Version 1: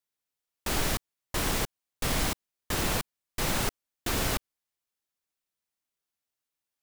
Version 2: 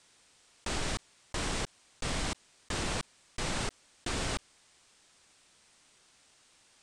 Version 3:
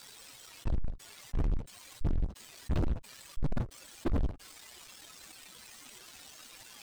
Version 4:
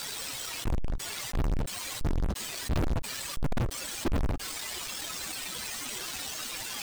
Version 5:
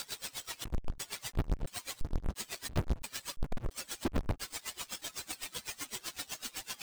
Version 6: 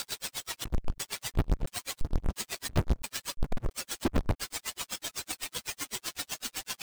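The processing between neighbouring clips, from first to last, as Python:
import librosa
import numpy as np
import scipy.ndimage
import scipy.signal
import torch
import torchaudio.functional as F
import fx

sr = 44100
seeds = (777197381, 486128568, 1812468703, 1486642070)

y1 = scipy.signal.sosfilt(scipy.signal.ellip(4, 1.0, 80, 8900.0, 'lowpass', fs=sr, output='sos'), x)
y1 = fx.env_flatten(y1, sr, amount_pct=50)
y1 = y1 * 10.0 ** (-5.5 / 20.0)
y2 = fx.spec_expand(y1, sr, power=3.6)
y2 = fx.leveller(y2, sr, passes=5)
y2 = fx.end_taper(y2, sr, db_per_s=250.0)
y2 = y2 * 10.0 ** (1.0 / 20.0)
y3 = fx.leveller(y2, sr, passes=5)
y4 = y3 * 10.0 ** (-24 * (0.5 - 0.5 * np.cos(2.0 * np.pi * 7.9 * np.arange(len(y3)) / sr)) / 20.0)
y5 = np.sign(y4) * np.maximum(np.abs(y4) - 10.0 ** (-51.5 / 20.0), 0.0)
y5 = y5 * 10.0 ** (5.5 / 20.0)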